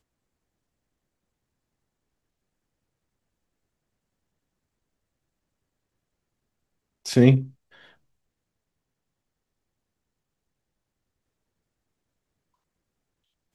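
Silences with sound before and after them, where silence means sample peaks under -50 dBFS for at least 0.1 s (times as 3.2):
7.52–7.72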